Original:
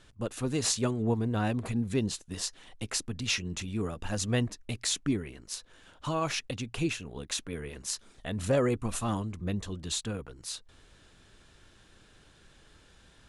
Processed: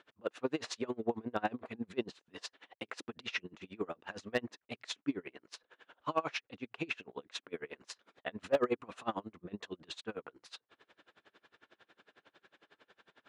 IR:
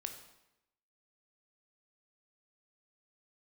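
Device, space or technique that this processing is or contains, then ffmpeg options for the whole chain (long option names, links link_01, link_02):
helicopter radio: -af "highpass=380,lowpass=2600,aeval=exprs='val(0)*pow(10,-29*(0.5-0.5*cos(2*PI*11*n/s))/20)':channel_layout=same,asoftclip=type=hard:threshold=-25dB,volume=5dB"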